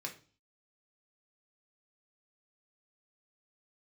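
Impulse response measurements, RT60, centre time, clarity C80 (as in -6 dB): 0.40 s, 13 ms, 18.0 dB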